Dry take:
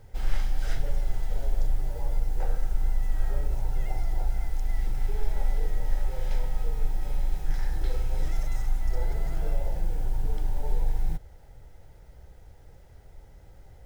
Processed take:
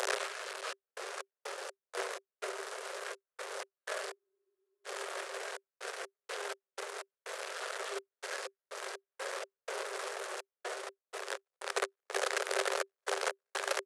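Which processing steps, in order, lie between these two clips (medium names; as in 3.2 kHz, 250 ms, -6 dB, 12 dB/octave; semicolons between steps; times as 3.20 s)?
one-bit delta coder 64 kbps, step -29 dBFS; compression 4:1, threshold -32 dBFS, peak gain reduction 15 dB; echo that smears into a reverb 915 ms, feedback 56%, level -10.5 dB; pitch shift -3.5 st; trance gate "xxx.x.x.x." 62 bpm -60 dB; rippled Chebyshev high-pass 380 Hz, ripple 6 dB; spectral freeze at 4.19 s, 0.67 s; trim +13.5 dB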